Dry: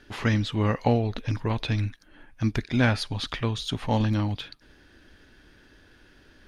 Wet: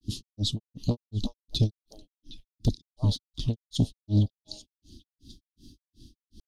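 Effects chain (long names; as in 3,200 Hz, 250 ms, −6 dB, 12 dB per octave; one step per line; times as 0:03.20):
inverse Chebyshev band-stop filter 510–2,300 Hz, stop band 40 dB
harmonic generator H 5 −7 dB, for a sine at −13 dBFS
echo through a band-pass that steps 308 ms, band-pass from 880 Hz, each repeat 1.4 octaves, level −8 dB
granular cloud 231 ms, grains 2.7 per second, pitch spread up and down by 0 semitones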